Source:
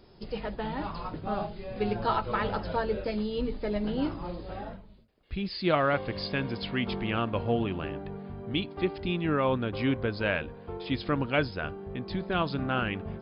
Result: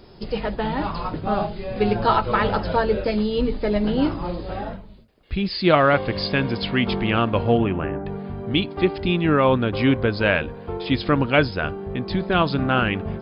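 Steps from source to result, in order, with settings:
0:07.57–0:08.05: low-pass filter 3,000 Hz → 1,800 Hz 24 dB per octave
level +9 dB

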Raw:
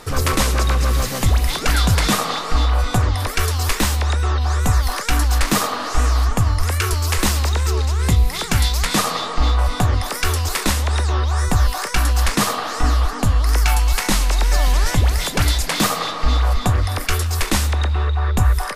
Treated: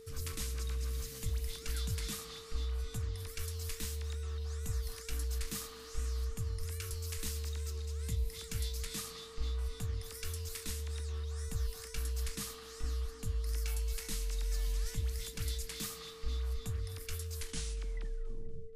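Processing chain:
turntable brake at the end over 1.46 s
high-shelf EQ 4,700 Hz +5 dB
steady tone 450 Hz −17 dBFS
guitar amp tone stack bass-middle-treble 6-0-2
feedback echo with a swinging delay time 240 ms, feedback 48%, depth 65 cents, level −20 dB
level −7.5 dB

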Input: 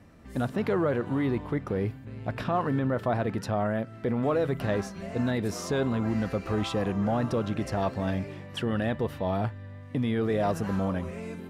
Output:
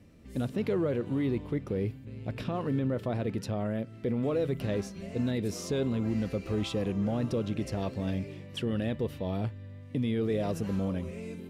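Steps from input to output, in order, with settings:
flat-topped bell 1,100 Hz −8.5 dB
level −2 dB

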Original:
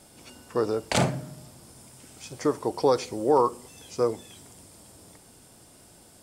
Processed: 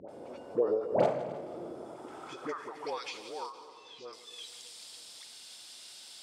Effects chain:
all-pass dispersion highs, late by 87 ms, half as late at 750 Hz
in parallel at +2 dB: upward compression, threshold −25 dBFS
0:01.42–0:02.47: on the sum: hollow resonant body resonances 350/1,300/3,400 Hz, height 11 dB, ringing for 25 ms
0:03.52–0:04.13: head-to-tape spacing loss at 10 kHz 26 dB
on a send: echo machine with several playback heads 87 ms, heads all three, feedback 43%, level −20.5 dB
on the sum: band-pass filter sweep 540 Hz → 3,900 Hz, 0:01.76–0:03.36
echo with a time of its own for lows and highs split 510 Hz, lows 307 ms, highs 157 ms, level −15 dB
every ending faded ahead of time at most 110 dB per second
level −2.5 dB

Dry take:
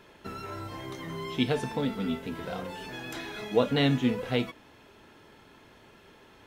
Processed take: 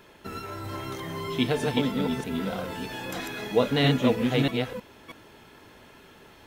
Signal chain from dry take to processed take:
delay that plays each chunk backwards 320 ms, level −2 dB
high-shelf EQ 11,000 Hz +8.5 dB
level +1.5 dB

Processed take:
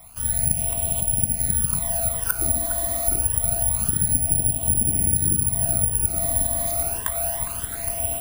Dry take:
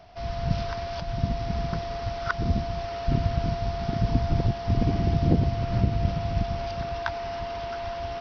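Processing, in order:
hum removal 52.45 Hz, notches 36
all-pass phaser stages 12, 0.27 Hz, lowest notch 140–1,600 Hz
bucket-brigade delay 409 ms, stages 4,096, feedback 56%, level −12 dB
downward compressor 5 to 1, threshold −27 dBFS, peak gain reduction 10 dB
bad sample-rate conversion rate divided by 4×, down filtered, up zero stuff
level +3 dB

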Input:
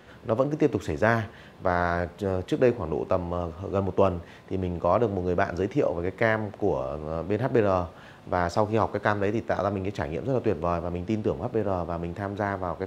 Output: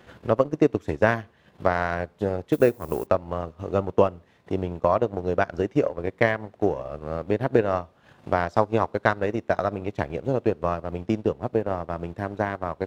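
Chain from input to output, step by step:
0:02.52–0:03.05: background noise violet −44 dBFS
transient designer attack +6 dB, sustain −12 dB
level −1 dB

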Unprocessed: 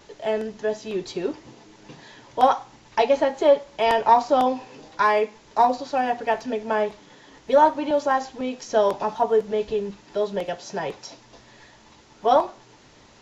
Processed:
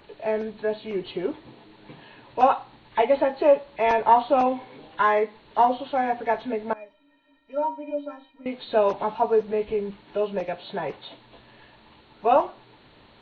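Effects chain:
hearing-aid frequency compression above 1,600 Hz 1.5 to 1
0:06.73–0:08.46: stiff-string resonator 280 Hz, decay 0.25 s, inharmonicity 0.03
level −1 dB

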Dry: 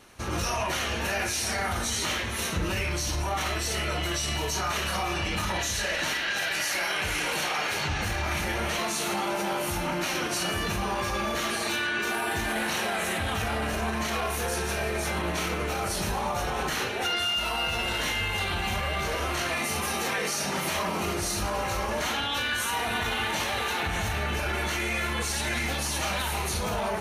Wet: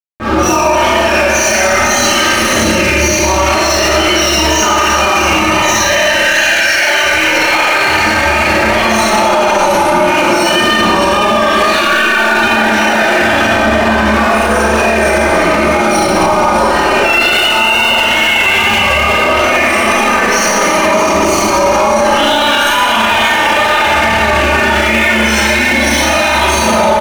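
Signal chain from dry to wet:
spectral peaks only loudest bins 32
high-pass filter 140 Hz 12 dB per octave
mains-hum notches 50/100/150/200/250/300/350 Hz
on a send: echo with a time of its own for lows and highs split 2,000 Hz, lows 296 ms, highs 630 ms, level −7 dB
on the sum: tape wow and flutter 76 cents
dead-zone distortion −41.5 dBFS
comb filter 3.3 ms, depth 56%
four-comb reverb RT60 1.9 s, combs from 28 ms, DRR −9.5 dB
boost into a limiter +21.5 dB
level −1 dB

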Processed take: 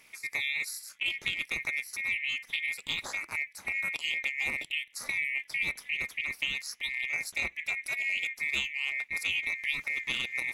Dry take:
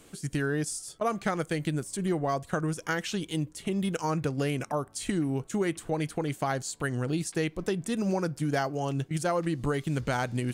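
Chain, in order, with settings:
neighbouring bands swapped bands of 2,000 Hz
amplitude modulation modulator 280 Hz, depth 75%

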